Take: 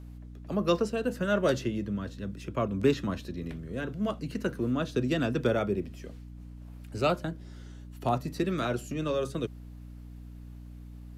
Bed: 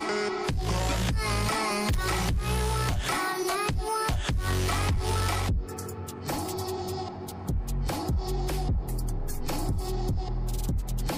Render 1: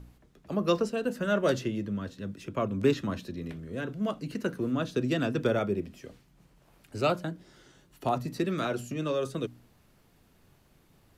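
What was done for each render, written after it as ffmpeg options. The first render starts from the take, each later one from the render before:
-af "bandreject=f=60:t=h:w=4,bandreject=f=120:t=h:w=4,bandreject=f=180:t=h:w=4,bandreject=f=240:t=h:w=4,bandreject=f=300:t=h:w=4"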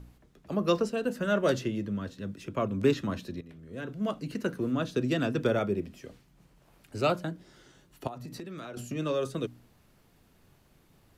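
-filter_complex "[0:a]asettb=1/sr,asplit=3[s0][s1][s2];[s0]atrim=end=8.074[s3];[s1]atrim=start=8.07:end=8.77,asetpts=PTS-STARTPTS,afade=t=in:d=0.004:c=qsin,afade=t=out:st=0.696:d=0.004:c=qsin,acompressor=threshold=0.0141:ratio=10:attack=3.2:release=140:knee=1:detection=peak[s4];[s2]atrim=start=8.766[s5];[s3][s4]acrossfade=d=0.004:c1=hsin:c2=qsin[s6];[s6][s5]acrossfade=d=0.004:c1=qsin:c2=hsin,asplit=2[s7][s8];[s7]atrim=end=3.41,asetpts=PTS-STARTPTS,afade=t=out:st=3.406:d=0.004:c=hsin:silence=0.177828[s9];[s8]atrim=start=3.41,asetpts=PTS-STARTPTS,afade=t=in:d=0.69:silence=0.177828[s10];[s9][s10]concat=n=2:v=0:a=1"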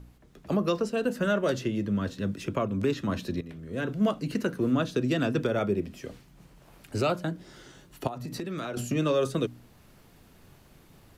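-af "dynaudnorm=f=180:g=3:m=2.24,alimiter=limit=0.158:level=0:latency=1:release=454"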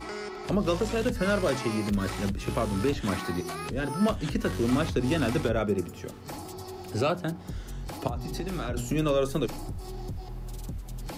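-filter_complex "[1:a]volume=0.398[s0];[0:a][s0]amix=inputs=2:normalize=0"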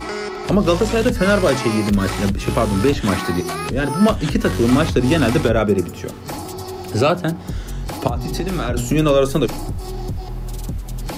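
-af "volume=3.35"

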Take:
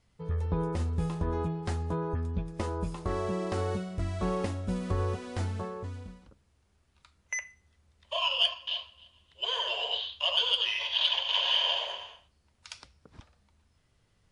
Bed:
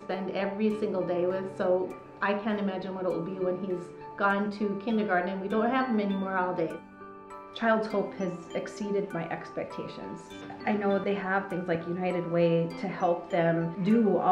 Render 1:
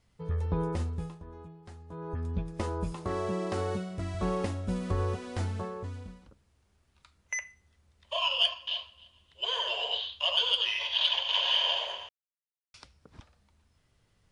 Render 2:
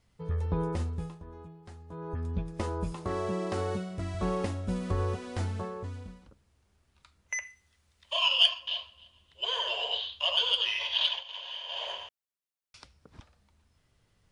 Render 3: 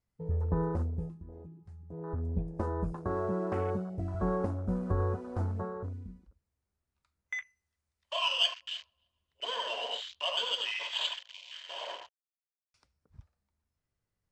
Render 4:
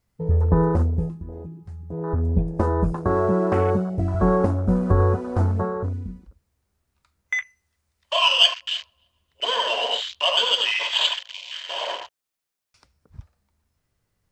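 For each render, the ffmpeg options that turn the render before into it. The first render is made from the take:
-filter_complex "[0:a]asettb=1/sr,asplit=3[s0][s1][s2];[s0]atrim=end=2.924[s3];[s1]atrim=start=2.92:end=4.15,asetpts=PTS-STARTPTS,afade=t=in:d=0.004:c=qsin,afade=t=out:st=1.226:d=0.004:c=qsin,highpass=88[s4];[s2]atrim=start=4.146[s5];[s3][s4]acrossfade=d=0.004:c1=hsin:c2=qsin[s6];[s6][s5]acrossfade=d=0.004:c1=qsin:c2=hsin,asplit=5[s7][s8][s9][s10][s11];[s7]atrim=end=1.19,asetpts=PTS-STARTPTS,afade=t=out:st=0.75:d=0.44:silence=0.158489[s12];[s8]atrim=start=1.19:end=1.88,asetpts=PTS-STARTPTS,volume=0.158[s13];[s9]atrim=start=1.88:end=12.09,asetpts=PTS-STARTPTS,afade=t=in:d=0.44:silence=0.158489,afade=t=out:st=10.206:d=0.004:c=hsin[s14];[s10]atrim=start=12.09:end=12.74,asetpts=PTS-STARTPTS,volume=0[s15];[s11]atrim=start=12.74,asetpts=PTS-STARTPTS,afade=t=in:d=0.004:c=hsin[s16];[s12][s13][s14][s15][s16]concat=n=5:v=0:a=1"
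-filter_complex "[0:a]asettb=1/sr,asplit=3[s0][s1][s2];[s0]atrim=end=7.434[s3];[s1]atrim=start=7.43:end=8.6,asetpts=PTS-STARTPTS,afade=t=in:d=0.004:c=qsin,afade=t=out:st=1.166:d=0.004:c=qsin,tiltshelf=f=1100:g=-5[s4];[s2]atrim=start=8.596[s5];[s3][s4]acrossfade=d=0.004:c1=hsin:c2=qsin[s6];[s6][s5]acrossfade=d=0.004:c1=qsin:c2=hsin,asplit=3[s7][s8][s9];[s7]atrim=end=11.24,asetpts=PTS-STARTPTS,afade=t=out:st=11.03:d=0.21:silence=0.211349[s10];[s8]atrim=start=11.24:end=11.68,asetpts=PTS-STARTPTS,volume=0.211[s11];[s9]atrim=start=11.68,asetpts=PTS-STARTPTS,afade=t=in:d=0.21:silence=0.211349[s12];[s10][s11][s12]concat=n=3:v=0:a=1"
-af "afwtdn=0.01,equalizer=f=3300:t=o:w=0.73:g=-6.5"
-af "volume=3.98"

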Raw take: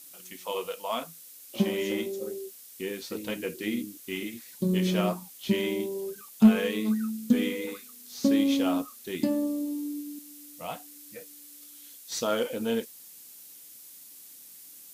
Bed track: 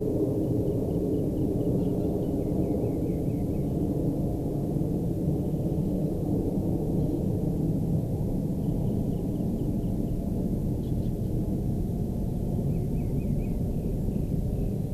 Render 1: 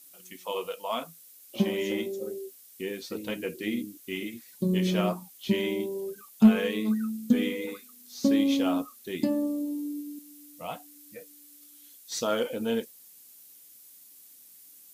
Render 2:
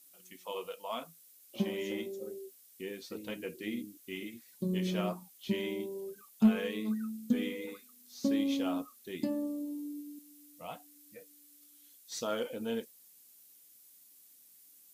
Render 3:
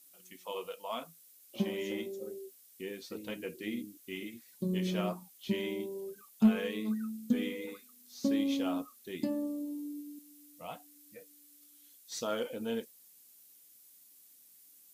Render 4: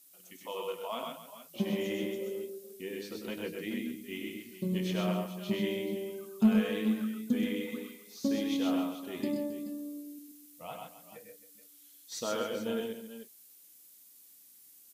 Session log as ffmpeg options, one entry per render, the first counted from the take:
-af "afftdn=nr=6:nf=-49"
-af "volume=0.447"
-af anull
-af "aecho=1:1:99|128|268|427|432:0.447|0.631|0.2|0.15|0.188"

